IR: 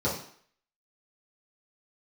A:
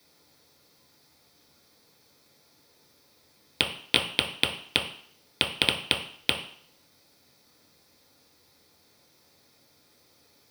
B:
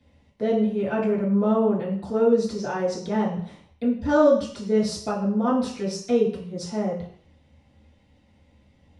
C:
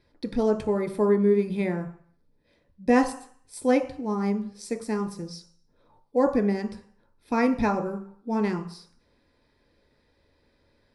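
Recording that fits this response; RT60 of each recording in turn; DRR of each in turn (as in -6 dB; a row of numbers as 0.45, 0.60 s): B; 0.55, 0.55, 0.55 s; -0.5, -9.0, 4.5 dB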